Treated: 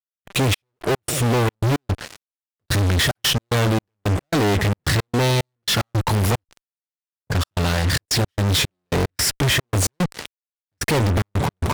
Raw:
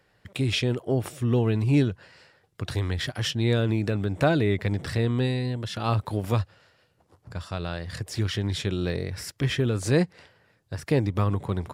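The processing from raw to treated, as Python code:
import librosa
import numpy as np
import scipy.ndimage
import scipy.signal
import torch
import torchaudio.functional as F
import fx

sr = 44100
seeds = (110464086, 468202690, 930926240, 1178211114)

y = fx.fuzz(x, sr, gain_db=46.0, gate_db=-47.0)
y = fx.step_gate(y, sr, bpm=111, pattern='x.xx..x.xxx.', floor_db=-60.0, edge_ms=4.5)
y = y * 10.0 ** (-3.5 / 20.0)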